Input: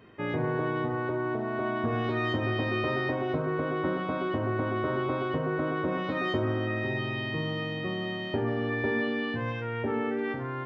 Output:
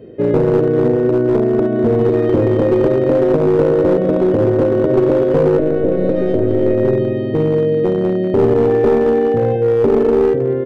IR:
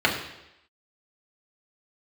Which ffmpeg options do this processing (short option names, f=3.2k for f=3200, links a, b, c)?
-filter_complex "[0:a]asplit=2[a][b];[1:a]atrim=start_sample=2205[c];[b][c]afir=irnorm=-1:irlink=0,volume=-29.5dB[d];[a][d]amix=inputs=2:normalize=0,asettb=1/sr,asplit=3[e][f][g];[e]atrim=end=5.584[h];[f]atrim=start=5.58:end=6.75,asetpts=PTS-STARTPTS,afade=t=in:d=0.004:c=qsin,afade=t=out:st=1.166:d=0.004:c=qsin,aeval=exprs='0.168*(cos(1*acos(clip(val(0)/0.168,-1,1)))-cos(1*PI/2))+0.00841*(cos(2*acos(clip(val(0)/0.168,-1,1)))-cos(2*PI/2))+0.00106*(cos(3*acos(clip(val(0)/0.168,-1,1)))-cos(3*PI/2))+0.0422*(cos(4*acos(clip(val(0)/0.168,-1,1)))-cos(4*PI/2))+0.000944*(cos(8*acos(clip(val(0)/0.168,-1,1)))-cos(8*PI/2))':c=same[i];[g]atrim=start=6.746[j];[h][i]acrossfade=d=0.004:c1=hsin:c2=qsin[k];[k][j]acrossfade=d=0.004:c1=qsin:c2=hsin,asettb=1/sr,asplit=3[l][m][n];[l]atrim=end=8.674[o];[m]atrim=start=8.67:end=9.56,asetpts=PTS-STARTPTS,afade=t=in:d=0.004:c=qsin,afade=t=out:st=0.886:d=0.004:c=qsin,aeval=exprs='val(0)+0.0316*sin(2*PI*780*n/s)':c=same[p];[n]atrim=start=9.556[q];[o][p]acrossfade=d=0.004:c1=hsin:c2=qsin[r];[r][q]acrossfade=d=0.004:c1=qsin:c2=hsin,asplit=2[s][t];[t]adelay=195,lowpass=f=3.4k:p=1,volume=-9.5dB,asplit=2[u][v];[v]adelay=195,lowpass=f=3.4k:p=1,volume=0.33,asplit=2[w][x];[x]adelay=195,lowpass=f=3.4k:p=1,volume=0.33,asplit=2[y][z];[z]adelay=195,lowpass=f=3.4k:p=1,volume=0.33[aa];[s][u][w][y][aa]amix=inputs=5:normalize=0,acrossover=split=1900[ab][ac];[ab]alimiter=limit=-20.5dB:level=0:latency=1:release=68[ad];[ac]acompressor=threshold=-48dB:ratio=6[ae];[ad][ae]amix=inputs=2:normalize=0,lowshelf=f=710:t=q:w=3:g=12.5,aeval=exprs='clip(val(0),-1,0.266)':c=same,volume=1.5dB"